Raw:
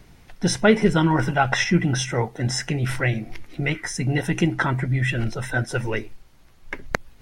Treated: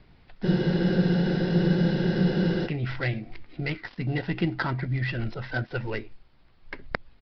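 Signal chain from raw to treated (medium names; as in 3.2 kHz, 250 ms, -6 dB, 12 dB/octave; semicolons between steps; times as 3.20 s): dead-time distortion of 0.089 ms; resampled via 11.025 kHz; spectral freeze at 0.47 s, 2.20 s; trim -5.5 dB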